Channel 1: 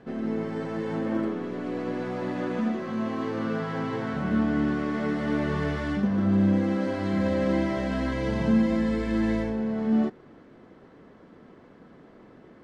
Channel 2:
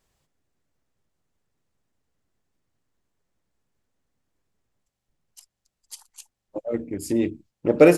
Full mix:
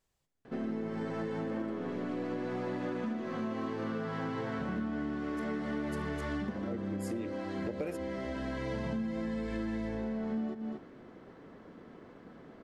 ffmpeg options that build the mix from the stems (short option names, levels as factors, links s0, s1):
-filter_complex "[0:a]bandreject=f=50:t=h:w=6,bandreject=f=100:t=h:w=6,bandreject=f=150:t=h:w=6,bandreject=f=200:t=h:w=6,adelay=450,volume=0.891,asplit=2[s0][s1];[s1]volume=0.237[s2];[1:a]acompressor=threshold=0.126:ratio=6,volume=0.376,asplit=2[s3][s4];[s4]apad=whole_len=577182[s5];[s0][s5]sidechaincompress=threshold=0.0126:ratio=8:attack=39:release=1280[s6];[s2]aecho=0:1:235:1[s7];[s6][s3][s7]amix=inputs=3:normalize=0,acompressor=threshold=0.0251:ratio=10"